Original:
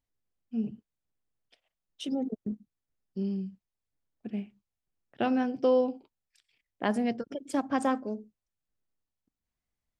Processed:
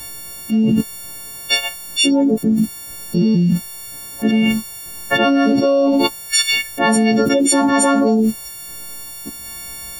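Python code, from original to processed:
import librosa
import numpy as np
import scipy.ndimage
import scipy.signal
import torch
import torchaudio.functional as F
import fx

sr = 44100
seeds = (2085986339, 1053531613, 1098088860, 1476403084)

y = fx.freq_snap(x, sr, grid_st=4)
y = fx.env_flatten(y, sr, amount_pct=100)
y = F.gain(torch.from_numpy(y), 8.0).numpy()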